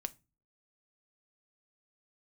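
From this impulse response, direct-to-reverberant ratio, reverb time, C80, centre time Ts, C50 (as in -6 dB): 11.0 dB, 0.30 s, 31.0 dB, 2 ms, 23.0 dB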